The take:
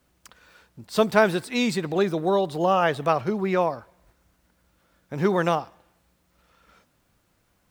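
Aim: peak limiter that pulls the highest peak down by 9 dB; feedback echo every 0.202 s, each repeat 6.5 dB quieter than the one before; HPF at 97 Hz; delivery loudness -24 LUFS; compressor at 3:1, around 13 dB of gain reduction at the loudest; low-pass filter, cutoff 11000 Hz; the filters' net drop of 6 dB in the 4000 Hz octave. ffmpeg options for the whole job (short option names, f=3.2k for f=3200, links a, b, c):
-af "highpass=97,lowpass=11k,equalizer=f=4k:t=o:g=-7.5,acompressor=threshold=-31dB:ratio=3,alimiter=level_in=0.5dB:limit=-24dB:level=0:latency=1,volume=-0.5dB,aecho=1:1:202|404|606|808|1010|1212:0.473|0.222|0.105|0.0491|0.0231|0.0109,volume=10.5dB"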